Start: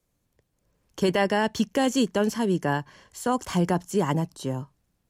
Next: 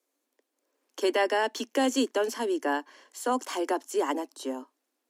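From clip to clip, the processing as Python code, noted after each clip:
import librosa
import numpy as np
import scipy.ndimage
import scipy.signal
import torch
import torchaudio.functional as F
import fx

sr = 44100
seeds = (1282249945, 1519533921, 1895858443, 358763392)

y = scipy.signal.sosfilt(scipy.signal.butter(16, 250.0, 'highpass', fs=sr, output='sos'), x)
y = y * librosa.db_to_amplitude(-1.5)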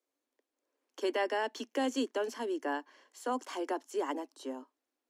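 y = fx.high_shelf(x, sr, hz=7800.0, db=-9.0)
y = y * librosa.db_to_amplitude(-6.5)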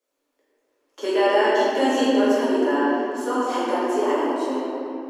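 y = fx.room_shoebox(x, sr, seeds[0], volume_m3=130.0, walls='hard', distance_m=1.4)
y = y * librosa.db_to_amplitude(2.5)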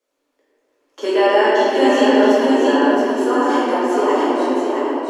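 y = fx.high_shelf(x, sr, hz=9300.0, db=-8.0)
y = y + 10.0 ** (-4.0 / 20.0) * np.pad(y, (int(670 * sr / 1000.0), 0))[:len(y)]
y = y * librosa.db_to_amplitude(4.5)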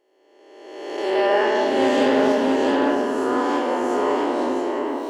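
y = fx.spec_swells(x, sr, rise_s=1.41)
y = fx.doppler_dist(y, sr, depth_ms=0.12)
y = y * librosa.db_to_amplitude(-7.5)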